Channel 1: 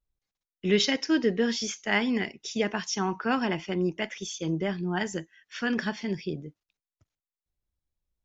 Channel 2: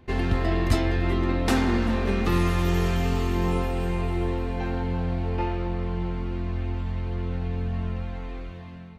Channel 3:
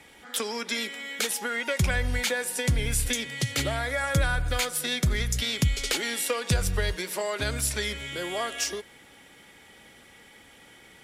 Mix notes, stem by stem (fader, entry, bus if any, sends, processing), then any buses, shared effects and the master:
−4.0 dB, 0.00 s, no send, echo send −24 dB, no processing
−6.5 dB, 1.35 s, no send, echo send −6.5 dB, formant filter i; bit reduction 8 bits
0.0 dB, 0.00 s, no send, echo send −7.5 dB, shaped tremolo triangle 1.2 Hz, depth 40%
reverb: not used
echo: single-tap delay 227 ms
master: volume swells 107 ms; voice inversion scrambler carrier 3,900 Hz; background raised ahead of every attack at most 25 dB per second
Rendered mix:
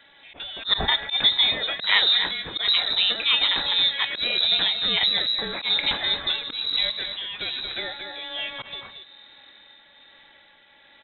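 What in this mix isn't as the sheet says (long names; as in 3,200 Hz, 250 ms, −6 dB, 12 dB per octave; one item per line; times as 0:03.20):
stem 1 −4.0 dB → +5.0 dB
stem 2: missing bit reduction 8 bits
master: missing background raised ahead of every attack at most 25 dB per second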